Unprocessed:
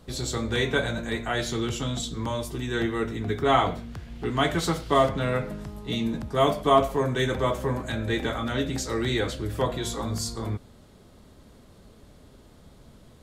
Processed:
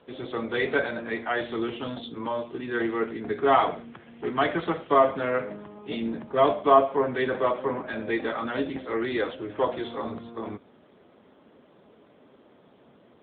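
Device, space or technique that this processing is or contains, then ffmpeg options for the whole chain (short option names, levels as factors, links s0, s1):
telephone: -filter_complex "[0:a]asettb=1/sr,asplit=3[s0][s1][s2];[s0]atrim=end=8.684[s3];[s1]atrim=start=8.68:end=9.48,asetpts=PTS-STARTPTS,afade=t=in:d=0.004:c=qsin,afade=t=out:st=0.796:d=0.004:c=qsin,asubboost=boost=9.5:cutoff=75[s4];[s2]atrim=start=9.476[s5];[s3][s4]acrossfade=d=0.004:c1=hsin:c2=qsin[s6];[s6][s5]acrossfade=d=0.004:c1=qsin:c2=hsin,highpass=290,lowpass=3200,volume=1.33" -ar 8000 -c:a libopencore_amrnb -b:a 7950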